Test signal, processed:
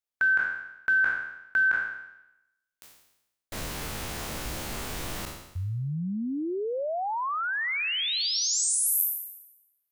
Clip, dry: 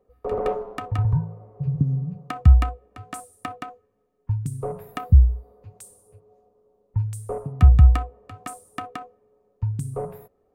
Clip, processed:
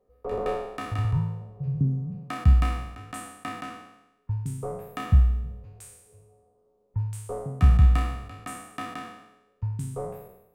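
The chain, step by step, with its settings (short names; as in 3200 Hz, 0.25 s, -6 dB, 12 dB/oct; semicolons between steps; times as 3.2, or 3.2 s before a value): spectral trails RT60 0.89 s; gain -5.5 dB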